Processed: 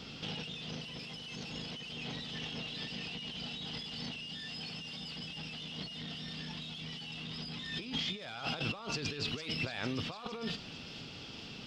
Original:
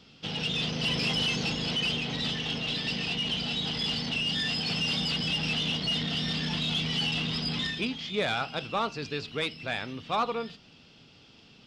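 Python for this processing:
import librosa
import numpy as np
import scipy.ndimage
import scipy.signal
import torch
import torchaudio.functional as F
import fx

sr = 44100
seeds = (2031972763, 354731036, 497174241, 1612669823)

y = fx.over_compress(x, sr, threshold_db=-41.0, ratio=-1.0)
y = fx.echo_wet_highpass(y, sr, ms=455, feedback_pct=62, hz=3500.0, wet_db=-10.0)
y = y * 10.0 ** (-1.0 / 20.0)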